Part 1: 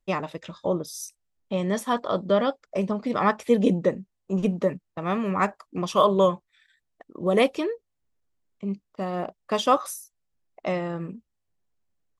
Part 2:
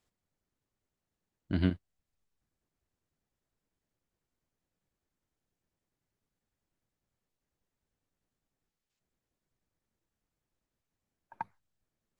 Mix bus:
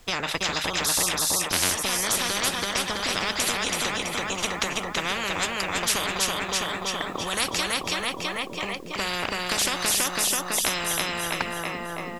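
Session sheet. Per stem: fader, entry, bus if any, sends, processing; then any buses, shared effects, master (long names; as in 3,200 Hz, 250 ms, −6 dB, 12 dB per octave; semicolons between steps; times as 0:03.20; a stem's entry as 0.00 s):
−1.0 dB, 0.00 s, no send, echo send −4.5 dB, downward compressor 4 to 1, threshold −30 dBFS, peak gain reduction 13.5 dB; automatic ducking −16 dB, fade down 0.60 s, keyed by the second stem
+2.0 dB, 0.00 s, no send, no echo send, no processing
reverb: not used
echo: repeating echo 329 ms, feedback 47%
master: automatic gain control gain up to 6.5 dB; every bin compressed towards the loudest bin 10 to 1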